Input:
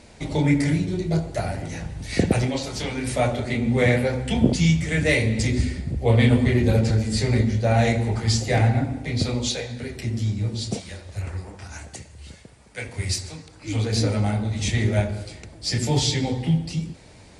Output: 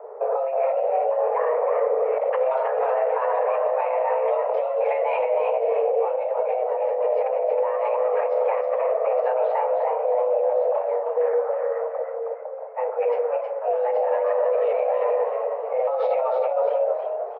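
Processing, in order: LPF 1400 Hz 24 dB/oct; bell 700 Hz -6.5 dB 1.1 oct; low-pass opened by the level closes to 600 Hz, open at -15.5 dBFS; negative-ratio compressor -28 dBFS, ratio -1; limiter -23.5 dBFS, peak gain reduction 8.5 dB; frequency shift +390 Hz; on a send: frequency-shifting echo 0.316 s, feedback 34%, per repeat +73 Hz, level -6 dB; on the sum: gain +7.5 dB

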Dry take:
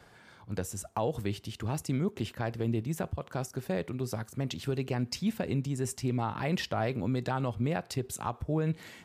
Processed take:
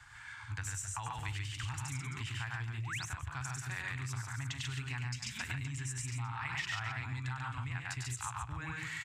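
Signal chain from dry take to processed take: loudspeakers at several distances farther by 34 m -3 dB, 48 m -3 dB, 91 m -11 dB; painted sound rise, 2.77–3.06, 300–6900 Hz -39 dBFS; EQ curve 130 Hz 0 dB, 190 Hz -28 dB, 270 Hz -15 dB, 400 Hz -26 dB, 570 Hz -29 dB, 880 Hz -2 dB, 1700 Hz +4 dB, 4800 Hz -3 dB, 7600 Hz +6 dB, 12000 Hz -10 dB; compressor, threshold -38 dBFS, peak gain reduction 12.5 dB; dynamic EQ 2200 Hz, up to +4 dB, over -58 dBFS, Q 1.3; gain +1 dB

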